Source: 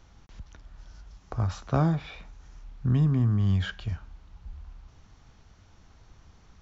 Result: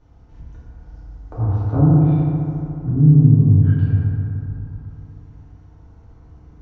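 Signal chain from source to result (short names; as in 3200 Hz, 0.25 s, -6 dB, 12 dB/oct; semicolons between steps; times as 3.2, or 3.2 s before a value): tilt shelf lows +8.5 dB, about 1300 Hz; treble ducked by the level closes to 460 Hz, closed at -11 dBFS; FDN reverb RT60 3 s, high-frequency decay 0.4×, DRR -9.5 dB; gain -9 dB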